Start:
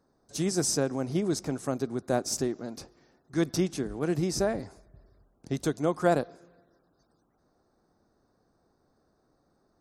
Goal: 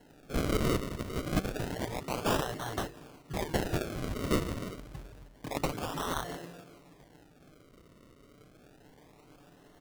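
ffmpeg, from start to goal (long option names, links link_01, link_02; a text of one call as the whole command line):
ffmpeg -i in.wav -filter_complex "[0:a]afftfilt=real='re*lt(hypot(re,im),0.0398)':imag='im*lt(hypot(re,im),0.0398)':win_size=1024:overlap=0.75,aecho=1:1:6.8:0.49,acrossover=split=240|3000[link_01][link_02][link_03];[link_02]acompressor=threshold=-44dB:ratio=3[link_04];[link_01][link_04][link_03]amix=inputs=3:normalize=0,acrossover=split=120|850[link_05][link_06][link_07];[link_06]aeval=exprs='(mod(150*val(0)+1,2)-1)/150':channel_layout=same[link_08];[link_05][link_08][link_07]amix=inputs=3:normalize=0,acrusher=samples=36:mix=1:aa=0.000001:lfo=1:lforange=36:lforate=0.28,asplit=2[link_09][link_10];[link_10]aeval=exprs='(mod(31.6*val(0)+1,2)-1)/31.6':channel_layout=same,volume=-8dB[link_11];[link_09][link_11]amix=inputs=2:normalize=0,volume=8.5dB" out.wav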